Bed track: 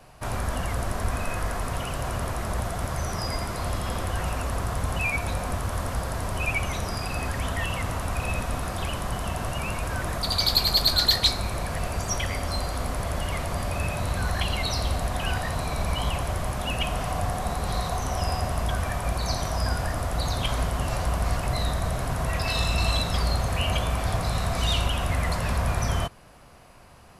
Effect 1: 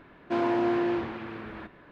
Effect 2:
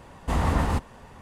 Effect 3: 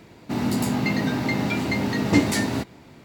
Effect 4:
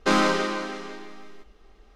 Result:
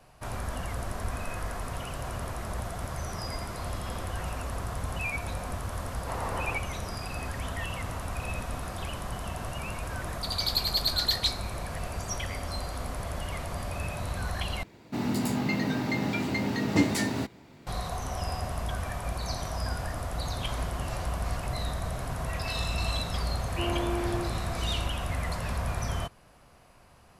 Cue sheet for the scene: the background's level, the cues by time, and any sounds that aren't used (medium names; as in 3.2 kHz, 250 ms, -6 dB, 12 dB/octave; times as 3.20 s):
bed track -6 dB
5.79 s: add 2 -5.5 dB + cabinet simulation 480–4100 Hz, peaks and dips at 520 Hz +4 dB, 1.9 kHz -4 dB, 3.3 kHz -8 dB
14.63 s: replace with 3 -5 dB
20.10 s: add 1 -4 dB + differentiator
23.27 s: add 1 -6.5 dB
not used: 4